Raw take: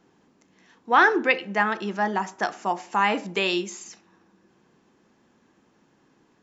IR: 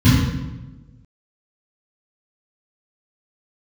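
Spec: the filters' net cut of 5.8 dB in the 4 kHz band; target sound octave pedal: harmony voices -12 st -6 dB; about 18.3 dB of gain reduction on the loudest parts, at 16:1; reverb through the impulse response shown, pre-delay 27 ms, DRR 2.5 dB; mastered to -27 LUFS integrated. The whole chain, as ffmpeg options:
-filter_complex "[0:a]equalizer=f=4000:t=o:g=-8.5,acompressor=threshold=0.0282:ratio=16,asplit=2[s0][s1];[1:a]atrim=start_sample=2205,adelay=27[s2];[s1][s2]afir=irnorm=-1:irlink=0,volume=0.075[s3];[s0][s3]amix=inputs=2:normalize=0,asplit=2[s4][s5];[s5]asetrate=22050,aresample=44100,atempo=2,volume=0.501[s6];[s4][s6]amix=inputs=2:normalize=0,volume=1.06"

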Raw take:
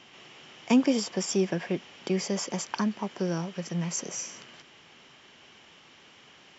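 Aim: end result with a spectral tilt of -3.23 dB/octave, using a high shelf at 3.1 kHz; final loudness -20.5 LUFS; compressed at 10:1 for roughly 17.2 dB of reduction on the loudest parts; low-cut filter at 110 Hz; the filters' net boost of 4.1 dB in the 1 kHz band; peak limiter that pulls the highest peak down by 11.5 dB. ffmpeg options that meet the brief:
-af "highpass=110,equalizer=f=1000:t=o:g=4.5,highshelf=f=3100:g=4,acompressor=threshold=0.02:ratio=10,volume=11.9,alimiter=limit=0.376:level=0:latency=1"

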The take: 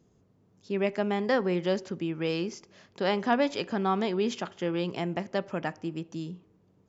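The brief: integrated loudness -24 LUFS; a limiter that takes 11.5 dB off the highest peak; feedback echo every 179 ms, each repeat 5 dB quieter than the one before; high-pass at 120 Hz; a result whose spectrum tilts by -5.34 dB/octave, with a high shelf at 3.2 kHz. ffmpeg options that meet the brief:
-af "highpass=120,highshelf=f=3200:g=-5,alimiter=limit=0.0668:level=0:latency=1,aecho=1:1:179|358|537|716|895|1074|1253:0.562|0.315|0.176|0.0988|0.0553|0.031|0.0173,volume=2.82"

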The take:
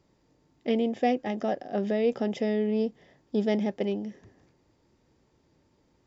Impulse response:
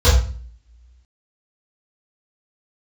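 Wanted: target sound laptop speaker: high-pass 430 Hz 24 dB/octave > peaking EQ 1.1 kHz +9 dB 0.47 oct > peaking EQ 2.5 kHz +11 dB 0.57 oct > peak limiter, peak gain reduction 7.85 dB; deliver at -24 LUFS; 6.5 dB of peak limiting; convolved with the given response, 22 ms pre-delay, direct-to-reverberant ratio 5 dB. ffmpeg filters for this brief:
-filter_complex "[0:a]alimiter=limit=0.112:level=0:latency=1,asplit=2[s0][s1];[1:a]atrim=start_sample=2205,adelay=22[s2];[s1][s2]afir=irnorm=-1:irlink=0,volume=0.0422[s3];[s0][s3]amix=inputs=2:normalize=0,highpass=f=430:w=0.5412,highpass=f=430:w=1.3066,equalizer=f=1100:t=o:w=0.47:g=9,equalizer=f=2500:t=o:w=0.57:g=11,volume=3.16,alimiter=limit=0.188:level=0:latency=1"

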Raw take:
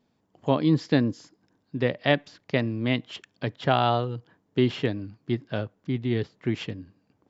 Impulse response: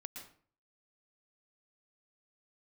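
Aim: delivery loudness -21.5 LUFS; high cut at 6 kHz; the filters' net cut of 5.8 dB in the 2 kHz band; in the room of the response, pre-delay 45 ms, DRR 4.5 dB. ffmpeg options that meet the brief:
-filter_complex "[0:a]lowpass=6000,equalizer=f=2000:t=o:g=-7,asplit=2[s0][s1];[1:a]atrim=start_sample=2205,adelay=45[s2];[s1][s2]afir=irnorm=-1:irlink=0,volume=0.891[s3];[s0][s3]amix=inputs=2:normalize=0,volume=1.78"

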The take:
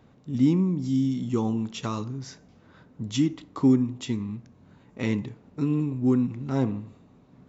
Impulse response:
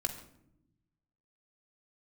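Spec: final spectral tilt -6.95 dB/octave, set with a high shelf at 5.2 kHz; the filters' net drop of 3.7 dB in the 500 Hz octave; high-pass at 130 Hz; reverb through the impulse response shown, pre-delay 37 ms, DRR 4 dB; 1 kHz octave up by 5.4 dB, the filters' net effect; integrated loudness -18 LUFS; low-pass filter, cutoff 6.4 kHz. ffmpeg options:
-filter_complex "[0:a]highpass=130,lowpass=6400,equalizer=f=500:t=o:g=-7,equalizer=f=1000:t=o:g=8,highshelf=f=5200:g=6,asplit=2[s0][s1];[1:a]atrim=start_sample=2205,adelay=37[s2];[s1][s2]afir=irnorm=-1:irlink=0,volume=0.501[s3];[s0][s3]amix=inputs=2:normalize=0,volume=2.51"

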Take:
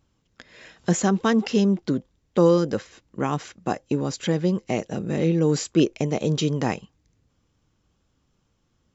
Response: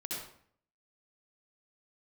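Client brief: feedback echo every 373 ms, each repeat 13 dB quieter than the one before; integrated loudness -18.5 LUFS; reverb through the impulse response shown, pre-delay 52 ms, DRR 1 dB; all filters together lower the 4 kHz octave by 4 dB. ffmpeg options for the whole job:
-filter_complex "[0:a]equalizer=f=4000:t=o:g=-5.5,aecho=1:1:373|746|1119:0.224|0.0493|0.0108,asplit=2[s0][s1];[1:a]atrim=start_sample=2205,adelay=52[s2];[s1][s2]afir=irnorm=-1:irlink=0,volume=0.75[s3];[s0][s3]amix=inputs=2:normalize=0,volume=1.26"

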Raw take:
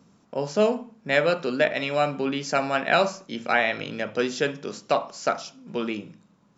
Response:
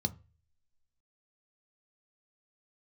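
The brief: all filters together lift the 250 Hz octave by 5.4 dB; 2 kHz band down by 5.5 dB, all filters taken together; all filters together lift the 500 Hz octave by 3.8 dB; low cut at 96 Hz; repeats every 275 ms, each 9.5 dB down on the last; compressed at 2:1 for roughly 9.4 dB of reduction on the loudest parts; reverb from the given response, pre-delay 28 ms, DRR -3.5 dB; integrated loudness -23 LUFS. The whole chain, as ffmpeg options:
-filter_complex "[0:a]highpass=96,equalizer=f=250:t=o:g=5.5,equalizer=f=500:t=o:g=4,equalizer=f=2000:t=o:g=-7.5,acompressor=threshold=0.0282:ratio=2,aecho=1:1:275|550|825|1100:0.335|0.111|0.0365|0.012,asplit=2[s0][s1];[1:a]atrim=start_sample=2205,adelay=28[s2];[s1][s2]afir=irnorm=-1:irlink=0,volume=1.12[s3];[s0][s3]amix=inputs=2:normalize=0,volume=0.841"

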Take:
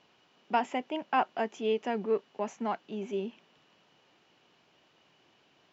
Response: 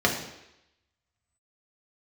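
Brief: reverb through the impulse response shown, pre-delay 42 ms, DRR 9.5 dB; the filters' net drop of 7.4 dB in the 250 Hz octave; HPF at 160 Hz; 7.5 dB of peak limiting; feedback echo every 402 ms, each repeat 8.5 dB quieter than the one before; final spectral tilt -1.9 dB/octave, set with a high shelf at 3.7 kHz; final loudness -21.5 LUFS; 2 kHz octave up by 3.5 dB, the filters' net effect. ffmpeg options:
-filter_complex "[0:a]highpass=160,equalizer=f=250:t=o:g=-8,equalizer=f=2000:t=o:g=7,highshelf=f=3700:g=-7.5,alimiter=limit=0.0794:level=0:latency=1,aecho=1:1:402|804|1206|1608:0.376|0.143|0.0543|0.0206,asplit=2[s0][s1];[1:a]atrim=start_sample=2205,adelay=42[s2];[s1][s2]afir=irnorm=-1:irlink=0,volume=0.0562[s3];[s0][s3]amix=inputs=2:normalize=0,volume=5.01"

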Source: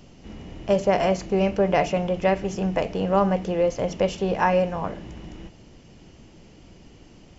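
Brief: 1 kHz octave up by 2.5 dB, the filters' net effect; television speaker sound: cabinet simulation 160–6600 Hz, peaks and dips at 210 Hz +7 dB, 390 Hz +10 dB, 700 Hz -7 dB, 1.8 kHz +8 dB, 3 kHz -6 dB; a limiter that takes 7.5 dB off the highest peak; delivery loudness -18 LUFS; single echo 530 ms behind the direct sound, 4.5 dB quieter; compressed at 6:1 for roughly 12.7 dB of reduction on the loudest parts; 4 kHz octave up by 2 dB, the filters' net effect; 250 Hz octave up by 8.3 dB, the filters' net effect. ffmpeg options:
-af "equalizer=f=250:t=o:g=6,equalizer=f=1000:t=o:g=5.5,equalizer=f=4000:t=o:g=8,acompressor=threshold=0.0501:ratio=6,alimiter=limit=0.0794:level=0:latency=1,highpass=f=160:w=0.5412,highpass=f=160:w=1.3066,equalizer=f=210:t=q:w=4:g=7,equalizer=f=390:t=q:w=4:g=10,equalizer=f=700:t=q:w=4:g=-7,equalizer=f=1800:t=q:w=4:g=8,equalizer=f=3000:t=q:w=4:g=-6,lowpass=f=6600:w=0.5412,lowpass=f=6600:w=1.3066,aecho=1:1:530:0.596,volume=3.16"

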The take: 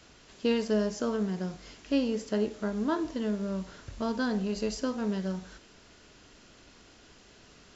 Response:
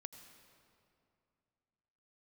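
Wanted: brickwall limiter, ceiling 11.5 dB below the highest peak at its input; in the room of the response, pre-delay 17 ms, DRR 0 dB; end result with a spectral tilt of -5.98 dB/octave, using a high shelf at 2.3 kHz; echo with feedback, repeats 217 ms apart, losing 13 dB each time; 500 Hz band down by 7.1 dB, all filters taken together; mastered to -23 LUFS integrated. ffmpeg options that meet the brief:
-filter_complex "[0:a]equalizer=f=500:t=o:g=-8.5,highshelf=f=2300:g=-5,alimiter=level_in=2.37:limit=0.0631:level=0:latency=1,volume=0.422,aecho=1:1:217|434|651:0.224|0.0493|0.0108,asplit=2[s0][s1];[1:a]atrim=start_sample=2205,adelay=17[s2];[s1][s2]afir=irnorm=-1:irlink=0,volume=1.78[s3];[s0][s3]amix=inputs=2:normalize=0,volume=5.31"

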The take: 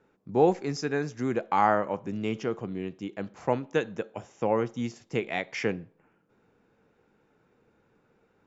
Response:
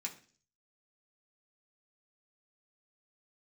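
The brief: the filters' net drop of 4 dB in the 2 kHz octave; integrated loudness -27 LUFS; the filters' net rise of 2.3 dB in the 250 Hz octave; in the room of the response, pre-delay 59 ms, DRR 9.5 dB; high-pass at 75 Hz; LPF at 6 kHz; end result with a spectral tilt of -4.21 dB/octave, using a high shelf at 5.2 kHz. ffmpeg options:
-filter_complex "[0:a]highpass=75,lowpass=6000,equalizer=f=250:t=o:g=3,equalizer=f=2000:t=o:g=-6,highshelf=f=5200:g=6.5,asplit=2[s0][s1];[1:a]atrim=start_sample=2205,adelay=59[s2];[s1][s2]afir=irnorm=-1:irlink=0,volume=0.376[s3];[s0][s3]amix=inputs=2:normalize=0,volume=1.19"

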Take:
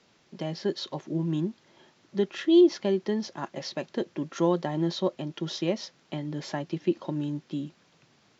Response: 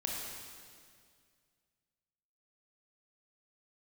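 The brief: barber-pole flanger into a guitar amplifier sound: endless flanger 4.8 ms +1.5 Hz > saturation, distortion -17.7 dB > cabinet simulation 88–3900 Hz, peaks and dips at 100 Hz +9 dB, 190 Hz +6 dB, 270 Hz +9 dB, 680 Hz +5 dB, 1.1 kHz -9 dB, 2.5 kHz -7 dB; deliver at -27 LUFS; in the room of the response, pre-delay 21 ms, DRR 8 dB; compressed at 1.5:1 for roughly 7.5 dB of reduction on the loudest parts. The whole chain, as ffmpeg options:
-filter_complex "[0:a]acompressor=threshold=0.0178:ratio=1.5,asplit=2[s0][s1];[1:a]atrim=start_sample=2205,adelay=21[s2];[s1][s2]afir=irnorm=-1:irlink=0,volume=0.282[s3];[s0][s3]amix=inputs=2:normalize=0,asplit=2[s4][s5];[s5]adelay=4.8,afreqshift=1.5[s6];[s4][s6]amix=inputs=2:normalize=1,asoftclip=threshold=0.0562,highpass=88,equalizer=f=100:t=q:w=4:g=9,equalizer=f=190:t=q:w=4:g=6,equalizer=f=270:t=q:w=4:g=9,equalizer=f=680:t=q:w=4:g=5,equalizer=f=1100:t=q:w=4:g=-9,equalizer=f=2500:t=q:w=4:g=-7,lowpass=f=3900:w=0.5412,lowpass=f=3900:w=1.3066,volume=2.37"

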